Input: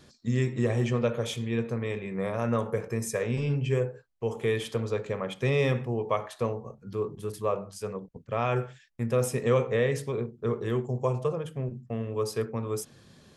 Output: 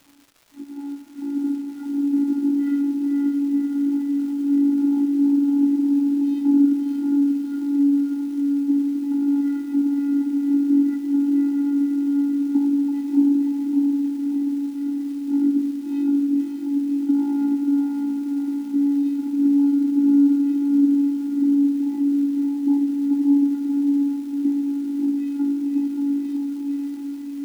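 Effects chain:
wavefolder on the positive side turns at −23 dBFS
low-pass filter 1,100 Hz 6 dB per octave
low-shelf EQ 260 Hz +3 dB
automatic gain control gain up to 13 dB
brickwall limiter −10.5 dBFS, peak gain reduction 8.5 dB
downward compressor 8 to 1, threshold −26 dBFS, peak gain reduction 12.5 dB
change of speed 0.487×
channel vocoder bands 16, square 283 Hz
surface crackle 500 per second −48 dBFS
feedback delay with all-pass diffusion 565 ms, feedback 60%, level −5.5 dB
on a send at −12.5 dB: convolution reverb RT60 0.50 s, pre-delay 35 ms
on the sum: feedback echo at a low word length 586 ms, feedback 35%, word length 9 bits, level −8 dB
level +5.5 dB

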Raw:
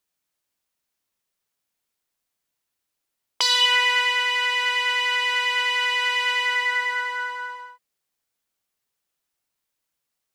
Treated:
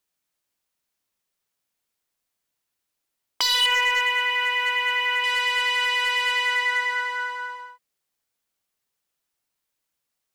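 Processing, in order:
0:03.66–0:05.24: flat-topped bell 5,900 Hz −10.5 dB
hard clipping −15.5 dBFS, distortion −18 dB

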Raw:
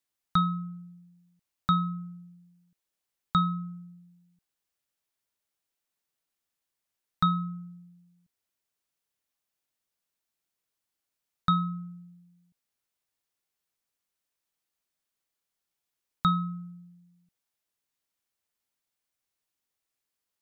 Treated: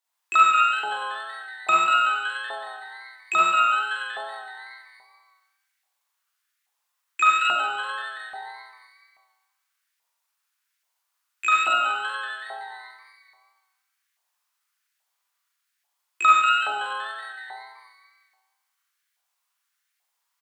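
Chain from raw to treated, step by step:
on a send: echo with shifted repeats 188 ms, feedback 62%, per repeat +120 Hz, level −10 dB
on the sum: four-comb reverb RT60 1.3 s, combs from 32 ms, DRR −7 dB
tape wow and flutter 25 cents
pitch-shifted copies added −12 semitones −14 dB, +12 semitones −4 dB
auto-filter high-pass saw up 1.2 Hz 760–1,800 Hz
level −1.5 dB

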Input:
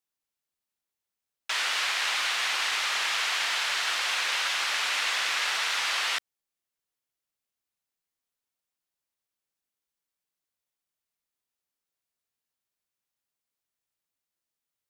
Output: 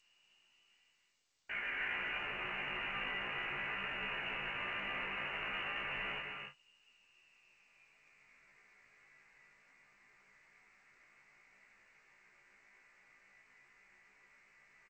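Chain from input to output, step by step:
gain on a spectral selection 0:00.70–0:01.92, 750–1,800 Hz +9 dB
brickwall limiter −24 dBFS, peak gain reduction 11 dB
reversed playback
upward compression, threshold −44 dBFS
reversed playback
leveller curve on the samples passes 1
band-pass filter sweep 330 Hz → 1,100 Hz, 0:06.48–0:08.43
double-tracking delay 18 ms −2 dB
ambience of single reflections 13 ms −4.5 dB, 35 ms −7.5 dB
reverb whose tail is shaped and stops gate 320 ms rising, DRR 2.5 dB
voice inversion scrambler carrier 3,200 Hz
level +6 dB
G.722 64 kbit/s 16,000 Hz

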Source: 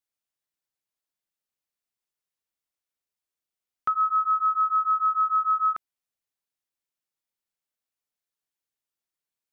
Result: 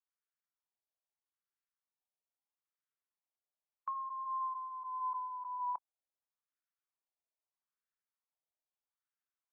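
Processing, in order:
pitch glide at a constant tempo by −7.5 semitones starting unshifted
output level in coarse steps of 19 dB
LFO wah 0.79 Hz 650–1,500 Hz, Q 2.5
level +3 dB

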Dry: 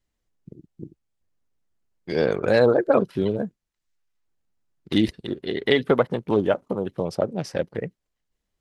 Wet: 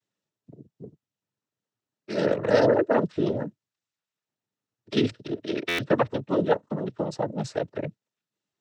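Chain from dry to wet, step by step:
cochlear-implant simulation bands 12
buffer that repeats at 0:05.68, samples 512, times 8
level −2 dB

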